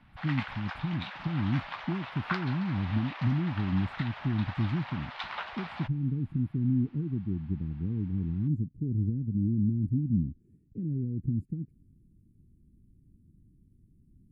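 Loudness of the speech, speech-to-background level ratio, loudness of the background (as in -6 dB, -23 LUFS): -31.5 LUFS, 8.5 dB, -40.0 LUFS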